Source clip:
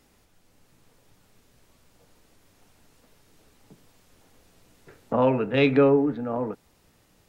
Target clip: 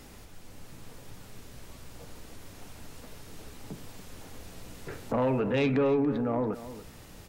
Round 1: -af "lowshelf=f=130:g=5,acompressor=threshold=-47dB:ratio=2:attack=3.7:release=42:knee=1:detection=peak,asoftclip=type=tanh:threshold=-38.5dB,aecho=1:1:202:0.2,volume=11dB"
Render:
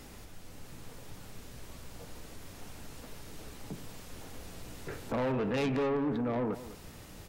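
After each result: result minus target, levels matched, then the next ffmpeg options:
soft clip: distortion +10 dB; echo 82 ms early
-af "lowshelf=f=130:g=5,acompressor=threshold=-47dB:ratio=2:attack=3.7:release=42:knee=1:detection=peak,asoftclip=type=tanh:threshold=-29.5dB,aecho=1:1:202:0.2,volume=11dB"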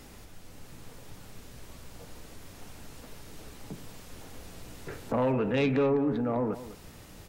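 echo 82 ms early
-af "lowshelf=f=130:g=5,acompressor=threshold=-47dB:ratio=2:attack=3.7:release=42:knee=1:detection=peak,asoftclip=type=tanh:threshold=-29.5dB,aecho=1:1:284:0.2,volume=11dB"

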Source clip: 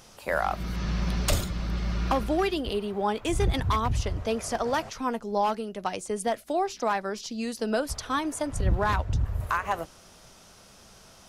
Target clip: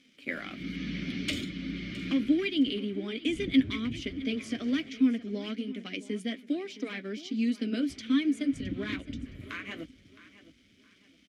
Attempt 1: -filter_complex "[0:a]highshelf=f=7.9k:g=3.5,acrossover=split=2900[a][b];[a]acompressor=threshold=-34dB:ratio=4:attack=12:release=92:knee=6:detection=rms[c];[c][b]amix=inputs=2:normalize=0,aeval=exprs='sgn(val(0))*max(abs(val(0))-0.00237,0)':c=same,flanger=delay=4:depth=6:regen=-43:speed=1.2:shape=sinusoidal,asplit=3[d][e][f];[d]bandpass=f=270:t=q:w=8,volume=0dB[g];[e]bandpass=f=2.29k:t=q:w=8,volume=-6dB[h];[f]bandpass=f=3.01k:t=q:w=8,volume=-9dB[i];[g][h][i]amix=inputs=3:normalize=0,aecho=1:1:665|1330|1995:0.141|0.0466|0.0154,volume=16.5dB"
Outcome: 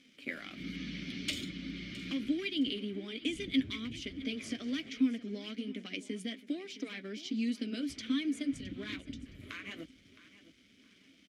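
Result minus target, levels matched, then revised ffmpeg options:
compressor: peak gain reduction +9 dB
-filter_complex "[0:a]highshelf=f=7.9k:g=3.5,acrossover=split=2900[a][b];[a]acompressor=threshold=-22dB:ratio=4:attack=12:release=92:knee=6:detection=rms[c];[c][b]amix=inputs=2:normalize=0,aeval=exprs='sgn(val(0))*max(abs(val(0))-0.00237,0)':c=same,flanger=delay=4:depth=6:regen=-43:speed=1.2:shape=sinusoidal,asplit=3[d][e][f];[d]bandpass=f=270:t=q:w=8,volume=0dB[g];[e]bandpass=f=2.29k:t=q:w=8,volume=-6dB[h];[f]bandpass=f=3.01k:t=q:w=8,volume=-9dB[i];[g][h][i]amix=inputs=3:normalize=0,aecho=1:1:665|1330|1995:0.141|0.0466|0.0154,volume=16.5dB"

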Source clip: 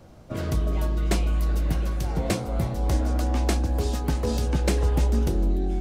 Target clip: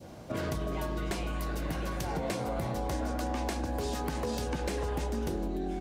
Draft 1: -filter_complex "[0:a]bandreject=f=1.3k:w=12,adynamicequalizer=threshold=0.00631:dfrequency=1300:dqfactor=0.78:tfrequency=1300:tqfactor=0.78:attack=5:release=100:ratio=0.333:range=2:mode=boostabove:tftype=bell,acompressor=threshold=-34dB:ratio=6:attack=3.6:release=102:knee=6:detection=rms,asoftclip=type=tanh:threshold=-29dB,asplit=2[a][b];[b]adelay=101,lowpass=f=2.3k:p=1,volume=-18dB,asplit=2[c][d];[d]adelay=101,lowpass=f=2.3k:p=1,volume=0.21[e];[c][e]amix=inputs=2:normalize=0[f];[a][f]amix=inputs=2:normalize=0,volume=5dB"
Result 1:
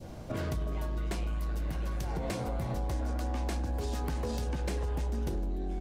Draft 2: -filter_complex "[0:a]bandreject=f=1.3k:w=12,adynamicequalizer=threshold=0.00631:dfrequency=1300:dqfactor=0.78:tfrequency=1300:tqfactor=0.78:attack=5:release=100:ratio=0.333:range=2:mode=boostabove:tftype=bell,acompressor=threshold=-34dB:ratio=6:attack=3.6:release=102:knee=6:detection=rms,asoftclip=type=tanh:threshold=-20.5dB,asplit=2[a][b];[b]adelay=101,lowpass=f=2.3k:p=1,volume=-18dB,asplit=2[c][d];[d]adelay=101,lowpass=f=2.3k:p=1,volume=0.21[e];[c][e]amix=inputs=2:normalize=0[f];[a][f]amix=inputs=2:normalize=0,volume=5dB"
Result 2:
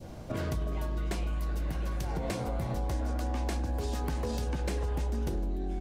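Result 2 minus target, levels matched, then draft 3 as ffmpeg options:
125 Hz band +3.0 dB
-filter_complex "[0:a]bandreject=f=1.3k:w=12,adynamicequalizer=threshold=0.00631:dfrequency=1300:dqfactor=0.78:tfrequency=1300:tqfactor=0.78:attack=5:release=100:ratio=0.333:range=2:mode=boostabove:tftype=bell,highpass=f=160:p=1,acompressor=threshold=-34dB:ratio=6:attack=3.6:release=102:knee=6:detection=rms,asoftclip=type=tanh:threshold=-20.5dB,asplit=2[a][b];[b]adelay=101,lowpass=f=2.3k:p=1,volume=-18dB,asplit=2[c][d];[d]adelay=101,lowpass=f=2.3k:p=1,volume=0.21[e];[c][e]amix=inputs=2:normalize=0[f];[a][f]amix=inputs=2:normalize=0,volume=5dB"

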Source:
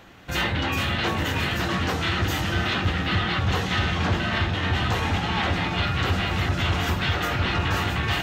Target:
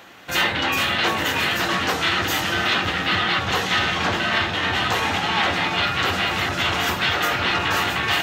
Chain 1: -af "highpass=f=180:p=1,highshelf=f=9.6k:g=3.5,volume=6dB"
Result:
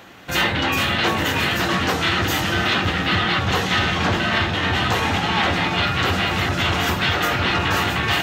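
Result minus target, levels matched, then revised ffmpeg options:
250 Hz band +4.0 dB
-af "highpass=f=470:p=1,highshelf=f=9.6k:g=3.5,volume=6dB"

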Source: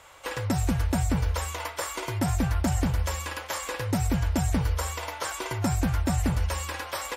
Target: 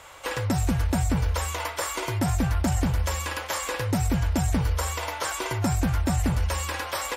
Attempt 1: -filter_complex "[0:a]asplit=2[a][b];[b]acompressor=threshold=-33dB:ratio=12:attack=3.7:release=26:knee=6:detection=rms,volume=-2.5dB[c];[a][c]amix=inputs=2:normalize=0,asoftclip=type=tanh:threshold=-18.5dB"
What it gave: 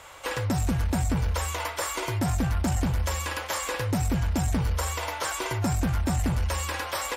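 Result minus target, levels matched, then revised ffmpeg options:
soft clip: distortion +13 dB
-filter_complex "[0:a]asplit=2[a][b];[b]acompressor=threshold=-33dB:ratio=12:attack=3.7:release=26:knee=6:detection=rms,volume=-2.5dB[c];[a][c]amix=inputs=2:normalize=0,asoftclip=type=tanh:threshold=-10.5dB"

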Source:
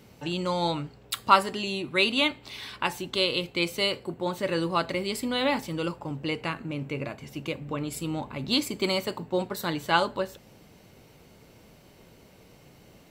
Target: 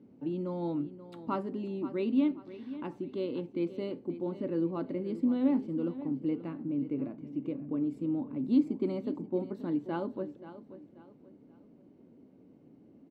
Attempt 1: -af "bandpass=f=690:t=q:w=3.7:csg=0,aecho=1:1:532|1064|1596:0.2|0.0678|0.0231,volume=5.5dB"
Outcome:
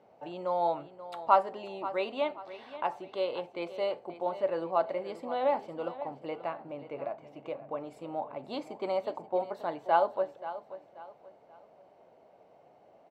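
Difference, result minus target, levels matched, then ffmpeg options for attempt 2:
250 Hz band -14.0 dB
-af "bandpass=f=270:t=q:w=3.7:csg=0,aecho=1:1:532|1064|1596:0.2|0.0678|0.0231,volume=5.5dB"

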